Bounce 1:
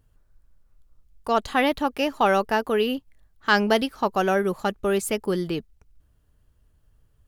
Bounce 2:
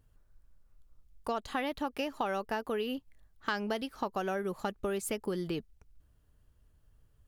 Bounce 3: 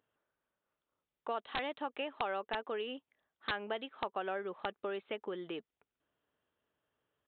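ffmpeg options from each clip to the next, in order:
-af "acompressor=threshold=-27dB:ratio=6,volume=-3.5dB"
-af "highpass=380,aresample=8000,aeval=exprs='(mod(11.9*val(0)+1,2)-1)/11.9':c=same,aresample=44100,volume=-2.5dB"

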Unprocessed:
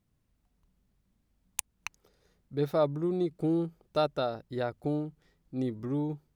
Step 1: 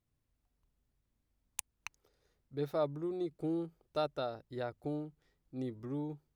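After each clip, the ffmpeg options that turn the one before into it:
-af "equalizer=f=190:t=o:w=0.25:g=-13,volume=-6.5dB"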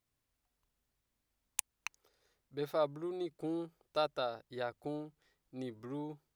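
-af "lowshelf=f=390:g=-11.5,volume=4dB"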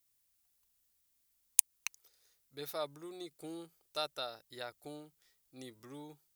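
-af "crystalizer=i=7:c=0,volume=-8.5dB"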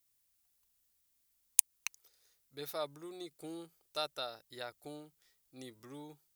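-af anull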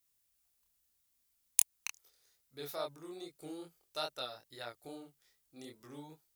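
-af "flanger=delay=22.5:depth=5.6:speed=2.4,volume=2.5dB"

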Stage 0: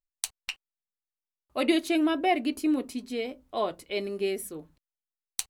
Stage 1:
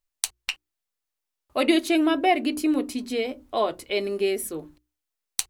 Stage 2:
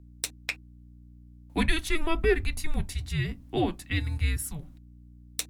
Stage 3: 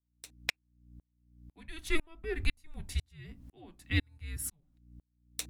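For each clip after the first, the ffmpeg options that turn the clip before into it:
-filter_complex "[0:a]equalizer=f=180:t=o:w=0.23:g=-9,bandreject=f=60:t=h:w=6,bandreject=f=120:t=h:w=6,bandreject=f=180:t=h:w=6,bandreject=f=240:t=h:w=6,bandreject=f=300:t=h:w=6,bandreject=f=360:t=h:w=6,asplit=2[a][b];[b]acompressor=threshold=-35dB:ratio=6,volume=-2.5dB[c];[a][c]amix=inputs=2:normalize=0,volume=3dB"
-filter_complex "[0:a]afreqshift=-320,aeval=exprs='val(0)+0.00447*(sin(2*PI*60*n/s)+sin(2*PI*2*60*n/s)/2+sin(2*PI*3*60*n/s)/3+sin(2*PI*4*60*n/s)/4+sin(2*PI*5*60*n/s)/5)':c=same,acrossover=split=240[a][b];[b]asoftclip=type=tanh:threshold=-10dB[c];[a][c]amix=inputs=2:normalize=0,volume=-2dB"
-af "aeval=exprs='val(0)*pow(10,-39*if(lt(mod(-2*n/s,1),2*abs(-2)/1000),1-mod(-2*n/s,1)/(2*abs(-2)/1000),(mod(-2*n/s,1)-2*abs(-2)/1000)/(1-2*abs(-2)/1000))/20)':c=same,volume=2dB"

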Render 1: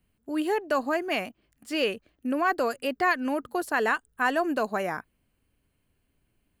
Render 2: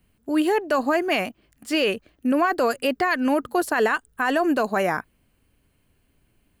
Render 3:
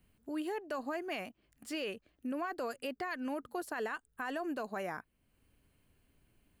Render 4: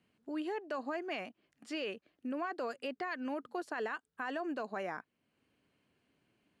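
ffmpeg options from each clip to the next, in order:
-af "alimiter=limit=-20dB:level=0:latency=1:release=22,volume=7.5dB"
-af "acompressor=threshold=-50dB:ratio=1.5,volume=-5.5dB"
-af "highpass=180,lowpass=5.5k"

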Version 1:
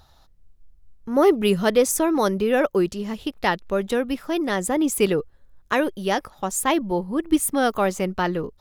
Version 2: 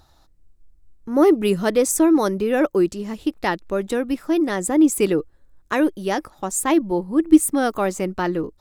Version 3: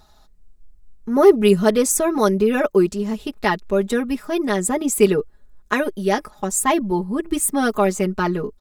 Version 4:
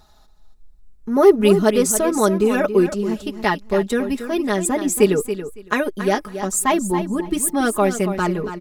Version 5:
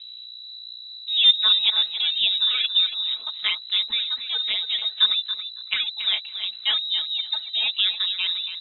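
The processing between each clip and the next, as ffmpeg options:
-af "equalizer=f=315:t=o:w=0.33:g=9,equalizer=f=3.15k:t=o:w=0.33:g=-4,equalizer=f=8k:t=o:w=0.33:g=6,volume=-1dB"
-af "aecho=1:1:4.8:0.92"
-af "aecho=1:1:279|558:0.299|0.0508"
-af "aeval=exprs='val(0)+0.02*(sin(2*PI*60*n/s)+sin(2*PI*2*60*n/s)/2+sin(2*PI*3*60*n/s)/3+sin(2*PI*4*60*n/s)/4+sin(2*PI*5*60*n/s)/5)':c=same,lowpass=f=3.4k:t=q:w=0.5098,lowpass=f=3.4k:t=q:w=0.6013,lowpass=f=3.4k:t=q:w=0.9,lowpass=f=3.4k:t=q:w=2.563,afreqshift=-4000,volume=-5dB"

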